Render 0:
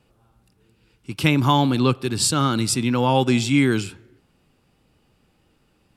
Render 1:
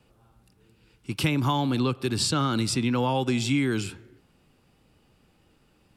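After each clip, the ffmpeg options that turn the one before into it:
-filter_complex "[0:a]acrossover=split=390|790|5800[a][b][c][d];[d]alimiter=limit=-23.5dB:level=0:latency=1:release=310[e];[a][b][c][e]amix=inputs=4:normalize=0,acompressor=threshold=-21dB:ratio=6"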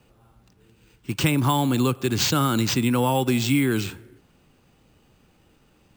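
-af "acrusher=samples=4:mix=1:aa=0.000001,volume=3.5dB"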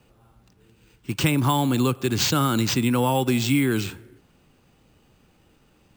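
-af anull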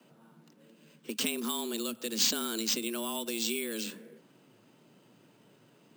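-filter_complex "[0:a]afreqshift=110,acrossover=split=150|3000[a][b][c];[b]acompressor=threshold=-35dB:ratio=6[d];[a][d][c]amix=inputs=3:normalize=0,volume=-2.5dB"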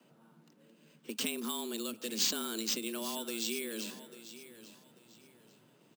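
-af "aecho=1:1:843|1686|2529:0.188|0.0527|0.0148,volume=-3.5dB"

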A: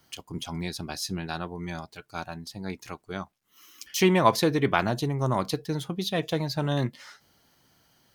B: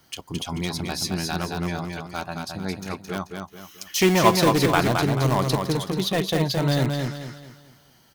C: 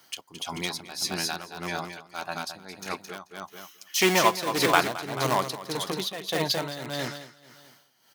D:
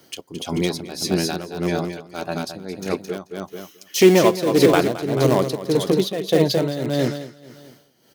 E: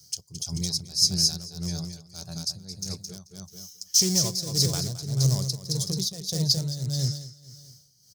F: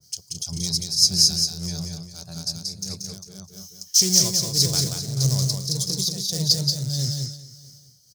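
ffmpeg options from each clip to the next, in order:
-filter_complex "[0:a]asplit=2[a][b];[b]aeval=exprs='(mod(9.44*val(0)+1,2)-1)/9.44':c=same,volume=-8.5dB[c];[a][c]amix=inputs=2:normalize=0,aecho=1:1:218|436|654|872|1090:0.596|0.22|0.0815|0.0302|0.0112,volume=2dB"
-af "highpass=f=670:p=1,tremolo=f=1.7:d=0.77,volume=3dB"
-filter_complex "[0:a]lowshelf=f=660:t=q:w=1.5:g=10.5,asplit=2[a][b];[b]alimiter=limit=-9dB:level=0:latency=1:release=461,volume=0dB[c];[a][c]amix=inputs=2:normalize=0,volume=-3.5dB"
-af "firequalizer=gain_entry='entry(120,0);entry(280,-28);entry(400,-25);entry(2700,-25);entry(5100,6);entry(11000,-5)':delay=0.05:min_phase=1,volume=3.5dB"
-af "aecho=1:1:182:0.596,adynamicequalizer=threshold=0.0112:dfrequency=1800:dqfactor=0.7:tfrequency=1800:tqfactor=0.7:attack=5:release=100:ratio=0.375:range=2:mode=boostabove:tftype=highshelf"

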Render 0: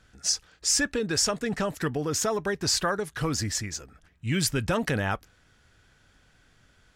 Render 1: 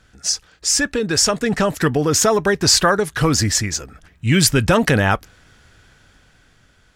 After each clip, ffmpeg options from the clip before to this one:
-af "dynaudnorm=f=370:g=7:m=6dB,volume=5.5dB"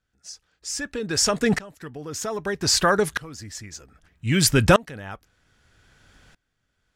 -af "aeval=exprs='val(0)*pow(10,-26*if(lt(mod(-0.63*n/s,1),2*abs(-0.63)/1000),1-mod(-0.63*n/s,1)/(2*abs(-0.63)/1000),(mod(-0.63*n/s,1)-2*abs(-0.63)/1000)/(1-2*abs(-0.63)/1000))/20)':c=same,volume=1dB"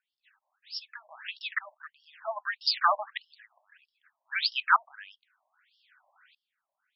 -af "afftfilt=real='re*between(b*sr/1024,780*pow(4000/780,0.5+0.5*sin(2*PI*1.6*pts/sr))/1.41,780*pow(4000/780,0.5+0.5*sin(2*PI*1.6*pts/sr))*1.41)':imag='im*between(b*sr/1024,780*pow(4000/780,0.5+0.5*sin(2*PI*1.6*pts/sr))/1.41,780*pow(4000/780,0.5+0.5*sin(2*PI*1.6*pts/sr))*1.41)':win_size=1024:overlap=0.75"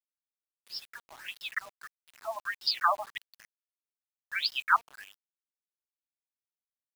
-af "acrusher=bits=7:mix=0:aa=0.000001,volume=-2dB"

